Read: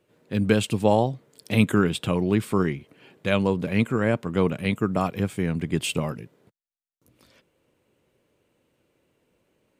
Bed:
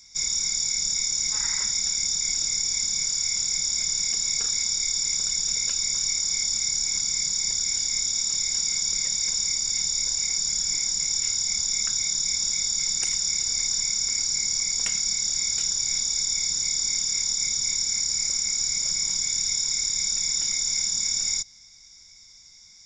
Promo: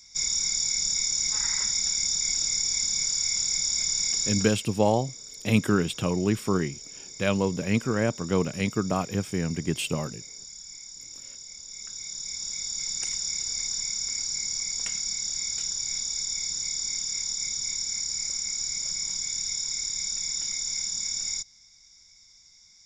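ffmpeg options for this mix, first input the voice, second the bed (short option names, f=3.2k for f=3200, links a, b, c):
-filter_complex "[0:a]adelay=3950,volume=-2.5dB[a];[1:a]volume=11.5dB,afade=t=out:st=4.22:d=0.41:silence=0.149624,afade=t=in:st=11.64:d=1.41:silence=0.237137[b];[a][b]amix=inputs=2:normalize=0"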